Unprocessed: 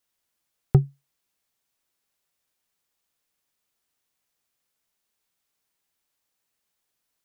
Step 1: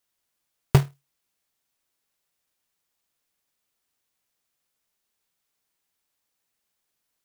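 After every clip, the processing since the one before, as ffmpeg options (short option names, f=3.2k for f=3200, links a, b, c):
-af "acrusher=bits=2:mode=log:mix=0:aa=0.000001"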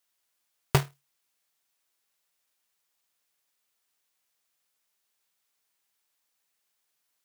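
-af "lowshelf=f=390:g=-10,volume=1.5dB"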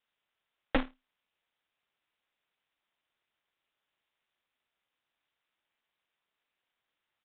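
-af "aeval=exprs='0.141*(abs(mod(val(0)/0.141+3,4)-2)-1)':c=same,aeval=exprs='val(0)*sin(2*PI*120*n/s)':c=same,aresample=8000,aresample=44100,volume=2.5dB"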